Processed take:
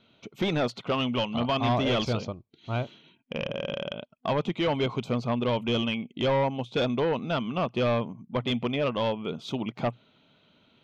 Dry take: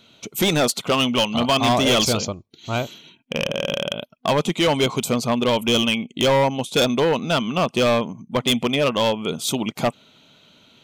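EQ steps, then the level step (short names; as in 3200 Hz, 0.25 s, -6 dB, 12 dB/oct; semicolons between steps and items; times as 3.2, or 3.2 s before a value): dynamic EQ 120 Hz, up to +6 dB, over -45 dBFS, Q 7.8; air absorption 240 m; -6.5 dB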